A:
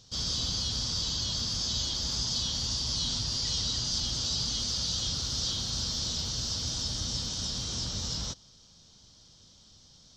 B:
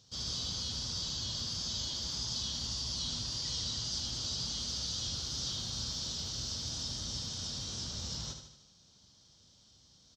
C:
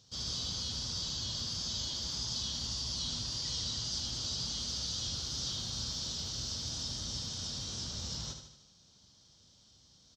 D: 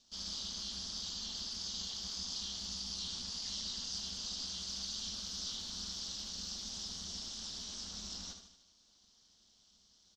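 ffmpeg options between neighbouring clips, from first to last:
ffmpeg -i in.wav -af "highpass=52,aecho=1:1:76|152|228|304|380|456:0.422|0.223|0.118|0.0628|0.0333|0.0176,volume=-6.5dB" out.wav
ffmpeg -i in.wav -af anull out.wav
ffmpeg -i in.wav -af "equalizer=frequency=190:width_type=o:width=1.9:gain=-12,aeval=exprs='val(0)*sin(2*PI*130*n/s)':channel_layout=same,volume=-1dB" out.wav

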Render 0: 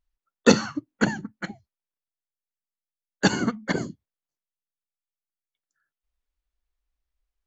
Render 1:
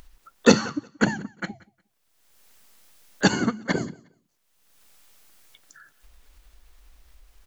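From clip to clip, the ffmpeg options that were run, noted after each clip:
ffmpeg -i in.wav -af "acompressor=mode=upward:threshold=-30dB:ratio=2.5,aecho=1:1:179|358:0.0708|0.0142,volume=1dB" out.wav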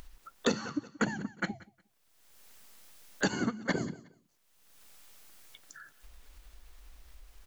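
ffmpeg -i in.wav -af "acompressor=threshold=-27dB:ratio=5" out.wav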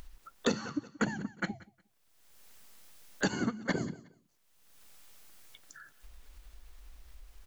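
ffmpeg -i in.wav -af "lowshelf=frequency=170:gain=3,volume=-1.5dB" out.wav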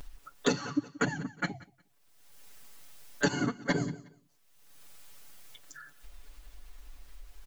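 ffmpeg -i in.wav -af "aecho=1:1:7:0.98" out.wav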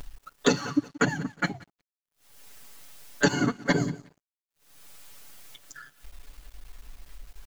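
ffmpeg -i in.wav -af "aeval=exprs='sgn(val(0))*max(abs(val(0))-0.00133,0)':channel_layout=same,volume=5.5dB" out.wav

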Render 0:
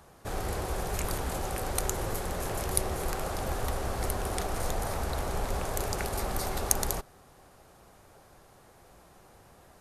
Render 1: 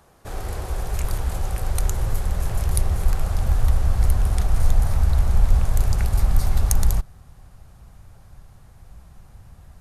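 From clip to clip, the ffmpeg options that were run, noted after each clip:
ffmpeg -i in.wav -af "asubboost=boost=10:cutoff=120" out.wav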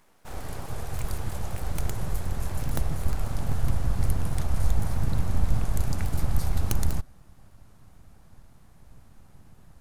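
ffmpeg -i in.wav -af "aeval=exprs='abs(val(0))':channel_layout=same,volume=-4.5dB" out.wav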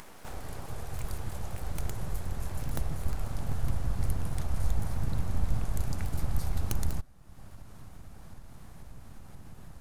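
ffmpeg -i in.wav -af "acompressor=mode=upward:threshold=-28dB:ratio=2.5,volume=-5dB" out.wav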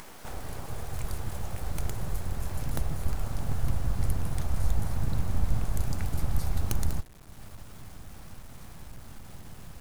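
ffmpeg -i in.wav -af "acrusher=bits=8:mix=0:aa=0.000001,volume=2dB" out.wav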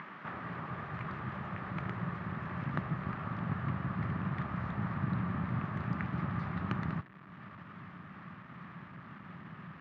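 ffmpeg -i in.wav -af "highpass=frequency=120:width=0.5412,highpass=frequency=120:width=1.3066,equalizer=frequency=180:width_type=q:width=4:gain=7,equalizer=frequency=480:width_type=q:width=4:gain=-8,equalizer=frequency=750:width_type=q:width=4:gain=-5,equalizer=frequency=1200:width_type=q:width=4:gain=10,equalizer=frequency=1800:width_type=q:width=4:gain=7,lowpass=frequency=2700:width=0.5412,lowpass=frequency=2700:width=1.3066" out.wav

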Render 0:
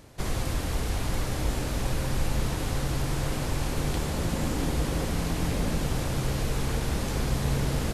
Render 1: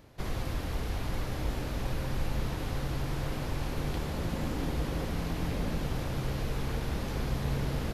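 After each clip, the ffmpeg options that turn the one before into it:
ffmpeg -i in.wav -af "equalizer=frequency=8300:width_type=o:width=0.96:gain=-9.5,volume=-4.5dB" out.wav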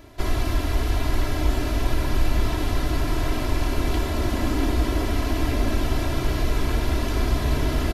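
ffmpeg -i in.wav -af "aecho=1:1:3:0.92,volume=7dB" out.wav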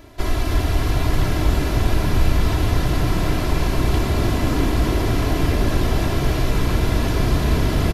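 ffmpeg -i in.wav -filter_complex "[0:a]asplit=8[link_01][link_02][link_03][link_04][link_05][link_06][link_07][link_08];[link_02]adelay=311,afreqshift=52,volume=-7dB[link_09];[link_03]adelay=622,afreqshift=104,volume=-12.4dB[link_10];[link_04]adelay=933,afreqshift=156,volume=-17.7dB[link_11];[link_05]adelay=1244,afreqshift=208,volume=-23.1dB[link_12];[link_06]adelay=1555,afreqshift=260,volume=-28.4dB[link_13];[link_07]adelay=1866,afreqshift=312,volume=-33.8dB[link_14];[link_08]adelay=2177,afreqshift=364,volume=-39.1dB[link_15];[link_01][link_09][link_10][link_11][link_12][link_13][link_14][link_15]amix=inputs=8:normalize=0,volume=2.5dB" out.wav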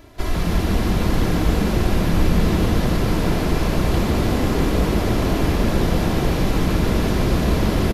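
ffmpeg -i in.wav -filter_complex "[0:a]asplit=7[link_01][link_02][link_03][link_04][link_05][link_06][link_07];[link_02]adelay=148,afreqshift=150,volume=-6dB[link_08];[link_03]adelay=296,afreqshift=300,volume=-12.6dB[link_09];[link_04]adelay=444,afreqshift=450,volume=-19.1dB[link_10];[link_05]adelay=592,afreqshift=600,volume=-25.7dB[link_11];[link_06]adelay=740,afreqshift=750,volume=-32.2dB[link_12];[link_07]adelay=888,afreqshift=900,volume=-38.8dB[link_13];[link_01][link_08][link_09][link_10][link_11][link_12][link_13]amix=inputs=7:normalize=0,volume=-1.5dB" out.wav

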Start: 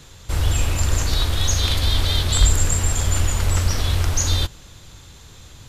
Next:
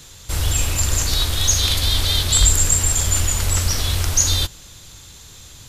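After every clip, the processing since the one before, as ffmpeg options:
ffmpeg -i in.wav -af "highshelf=frequency=3500:gain=10.5,volume=-1.5dB" out.wav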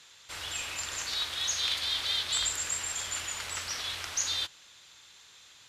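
ffmpeg -i in.wav -af "bandpass=frequency=2100:width_type=q:width=0.74:csg=0,volume=-6.5dB" out.wav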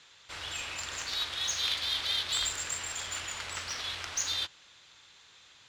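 ffmpeg -i in.wav -af "adynamicsmooth=sensitivity=4.5:basefreq=6400" out.wav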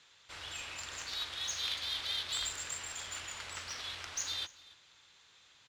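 ffmpeg -i in.wav -af "aecho=1:1:285:0.0891,volume=-5.5dB" out.wav

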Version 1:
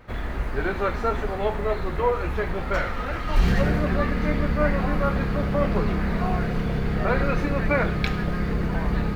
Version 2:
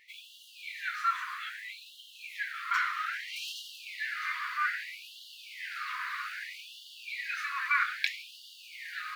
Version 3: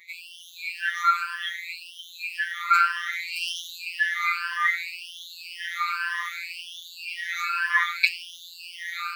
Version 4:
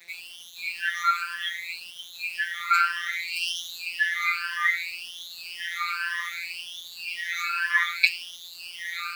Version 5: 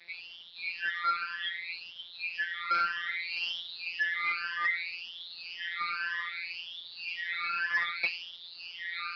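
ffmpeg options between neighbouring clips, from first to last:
ffmpeg -i in.wav -af "afftfilt=real='re*gte(b*sr/1024,950*pow(2800/950,0.5+0.5*sin(2*PI*0.62*pts/sr)))':imag='im*gte(b*sr/1024,950*pow(2800/950,0.5+0.5*sin(2*PI*0.62*pts/sr)))':win_size=1024:overlap=0.75" out.wav
ffmpeg -i in.wav -af "afftfilt=real='re*pow(10,21/40*sin(2*PI*(1.2*log(max(b,1)*sr/1024/100)/log(2)-(1.9)*(pts-256)/sr)))':imag='im*pow(10,21/40*sin(2*PI*(1.2*log(max(b,1)*sr/1024/100)/log(2)-(1.9)*(pts-256)/sr)))':win_size=1024:overlap=0.75,afftfilt=real='hypot(re,im)*cos(PI*b)':imag='0':win_size=1024:overlap=0.75,volume=6.5dB" out.wav
ffmpeg -i in.wav -af "highpass=1500,acrusher=bits=7:mix=0:aa=0.5,volume=1.5dB" out.wav
ffmpeg -i in.wav -af "asoftclip=type=tanh:threshold=-19dB,aresample=11025,aresample=44100,volume=-3.5dB" out.wav

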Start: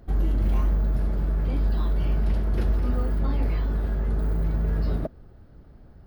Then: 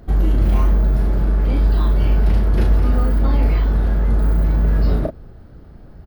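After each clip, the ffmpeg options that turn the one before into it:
ffmpeg -i in.wav -filter_complex "[0:a]asplit=2[link_01][link_02];[link_02]adelay=35,volume=-5.5dB[link_03];[link_01][link_03]amix=inputs=2:normalize=0,volume=7.5dB" out.wav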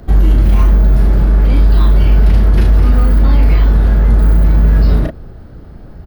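ffmpeg -i in.wav -filter_complex "[0:a]acrossover=split=220|1500[link_01][link_02][link_03];[link_02]asoftclip=type=tanh:threshold=-29dB[link_04];[link_01][link_04][link_03]amix=inputs=3:normalize=0,alimiter=level_in=8.5dB:limit=-1dB:release=50:level=0:latency=1,volume=-1dB" out.wav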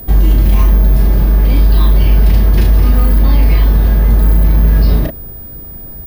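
ffmpeg -i in.wav -af "highshelf=frequency=3400:gain=6.5,aeval=exprs='val(0)+0.0398*sin(2*PI*15000*n/s)':channel_layout=same,bandreject=frequency=1400:width=7.5" out.wav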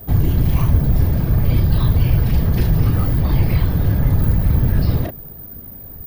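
ffmpeg -i in.wav -af "afftfilt=real='hypot(re,im)*cos(2*PI*random(0))':imag='hypot(re,im)*sin(2*PI*random(1))':win_size=512:overlap=0.75" out.wav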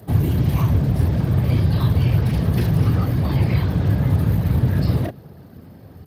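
ffmpeg -i in.wav -ar 32000 -c:a libspeex -b:a 36k out.spx

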